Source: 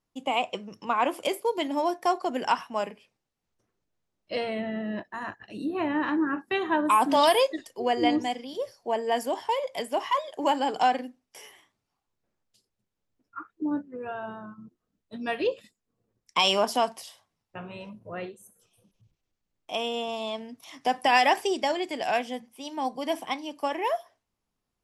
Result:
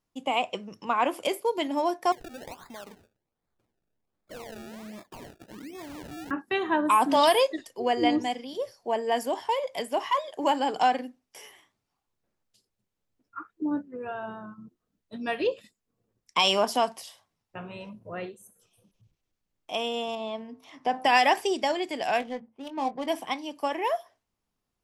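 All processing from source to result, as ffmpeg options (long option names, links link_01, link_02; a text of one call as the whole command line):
ffmpeg -i in.wav -filter_complex "[0:a]asettb=1/sr,asplit=3[link_01][link_02][link_03];[link_01]atrim=end=2.124[link_04];[link_02]atrim=start=2.12:end=6.31,asetpts=PTS-STARTPTS,afade=type=in:duration=0.004:curve=qsin,afade=type=out:start_time=4.186:duration=0.004:curve=qsin,acompressor=threshold=-41dB:ratio=4:attack=3.2:release=140:knee=1:detection=peak,acrusher=samples=29:mix=1:aa=0.000001:lfo=1:lforange=29:lforate=1.3[link_05];[link_03]atrim=start=6.306[link_06];[link_04][link_05]acrossfade=duration=0.004:curve1=hsin:curve2=qsin[link_07];[link_07][link_06]acrossfade=duration=0.004:curve1=qsin:curve2=hsin,asettb=1/sr,asplit=3[link_08][link_09][link_10];[link_08]atrim=end=20.154[link_11];[link_09]atrim=start=20.15:end=21.05,asetpts=PTS-STARTPTS,afade=type=in:duration=0.004:curve=qsin,afade=type=out:start_time=0.896:duration=0.004:curve=qsin,lowpass=frequency=1900:poles=1,bandreject=frequency=64.31:width_type=h:width=4,bandreject=frequency=128.62:width_type=h:width=4,bandreject=frequency=192.93:width_type=h:width=4,bandreject=frequency=257.24:width_type=h:width=4,bandreject=frequency=321.55:width_type=h:width=4,bandreject=frequency=385.86:width_type=h:width=4,bandreject=frequency=450.17:width_type=h:width=4,bandreject=frequency=514.48:width_type=h:width=4,bandreject=frequency=578.79:width_type=h:width=4,bandreject=frequency=643.1:width_type=h:width=4,bandreject=frequency=707.41:width_type=h:width=4,bandreject=frequency=771.72:width_type=h:width=4,bandreject=frequency=836.03:width_type=h:width=4,bandreject=frequency=900.34:width_type=h:width=4,bandreject=frequency=964.65:width_type=h:width=4,bandreject=frequency=1028.96:width_type=h:width=4,bandreject=frequency=1093.27:width_type=h:width=4,bandreject=frequency=1157.58:width_type=h:width=4,bandreject=frequency=1221.89:width_type=h:width=4,bandreject=frequency=1286.2:width_type=h:width=4,bandreject=frequency=1350.51:width_type=h:width=4,bandreject=frequency=1414.82:width_type=h:width=4,bandreject=frequency=1479.13:width_type=h:width=4,bandreject=frequency=1543.44:width_type=h:width=4[link_12];[link_10]atrim=start=21.046[link_13];[link_11][link_12]acrossfade=duration=0.004:curve1=hsin:curve2=qsin[link_14];[link_14][link_13]acrossfade=duration=0.004:curve1=qsin:curve2=hsin,asettb=1/sr,asplit=3[link_15][link_16][link_17];[link_15]atrim=end=22.204[link_18];[link_16]atrim=start=22.2:end=23.08,asetpts=PTS-STARTPTS,afade=type=in:duration=0.004:curve=qsin,afade=type=out:start_time=0.876:duration=0.004:curve=qsin,adynamicsmooth=sensitivity=7.5:basefreq=820,asplit=2[link_19][link_20];[link_20]adelay=22,volume=-11dB[link_21];[link_19][link_21]amix=inputs=2:normalize=0,atrim=end_sample=38808[link_22];[link_17]atrim=start=23.076[link_23];[link_18][link_22]acrossfade=duration=0.004:curve1=hsin:curve2=qsin[link_24];[link_24][link_23]acrossfade=duration=0.004:curve1=qsin:curve2=hsin" out.wav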